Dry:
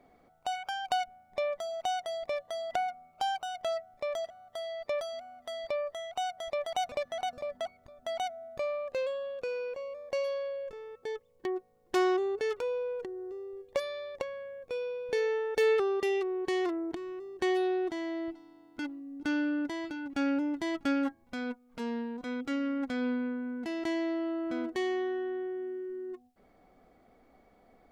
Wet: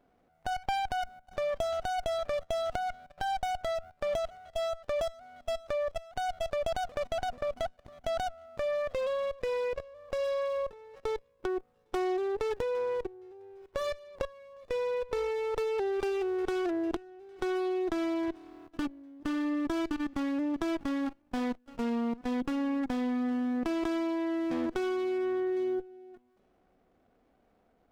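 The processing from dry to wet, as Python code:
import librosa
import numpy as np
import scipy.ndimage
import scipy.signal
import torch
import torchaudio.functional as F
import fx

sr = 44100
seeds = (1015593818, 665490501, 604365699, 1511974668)

y = fx.echo_thinned(x, sr, ms=807, feedback_pct=31, hz=910.0, wet_db=-24.0)
y = fx.level_steps(y, sr, step_db=19)
y = fx.running_max(y, sr, window=17)
y = y * librosa.db_to_amplitude(8.0)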